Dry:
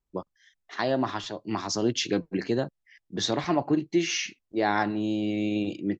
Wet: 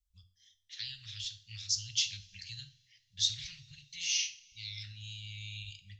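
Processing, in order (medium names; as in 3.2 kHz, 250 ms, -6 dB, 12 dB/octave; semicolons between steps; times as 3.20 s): inverse Chebyshev band-stop 280–920 Hz, stop band 70 dB; two-slope reverb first 0.39 s, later 2.4 s, from -22 dB, DRR 8 dB; time-frequency box 4.45–4.83 s, 350–2000 Hz -23 dB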